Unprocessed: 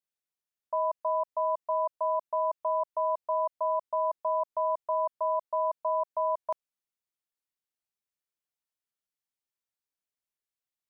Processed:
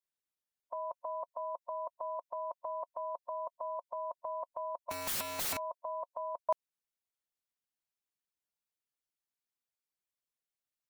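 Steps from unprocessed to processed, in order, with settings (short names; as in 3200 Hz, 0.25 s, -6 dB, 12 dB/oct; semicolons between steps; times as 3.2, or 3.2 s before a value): 4.91–5.57 infinite clipping; harmonic-percussive split harmonic -12 dB; gain +1 dB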